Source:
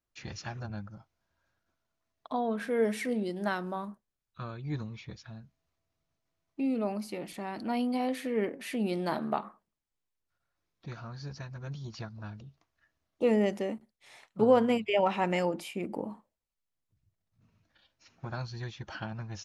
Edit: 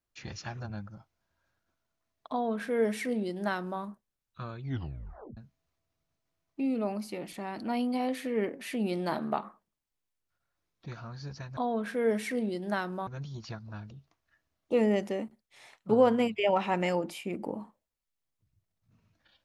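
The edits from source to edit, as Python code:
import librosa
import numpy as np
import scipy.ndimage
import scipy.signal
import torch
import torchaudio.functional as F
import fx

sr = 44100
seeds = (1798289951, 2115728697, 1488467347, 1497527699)

y = fx.edit(x, sr, fx.duplicate(start_s=2.31, length_s=1.5, to_s=11.57),
    fx.tape_stop(start_s=4.64, length_s=0.73), tone=tone)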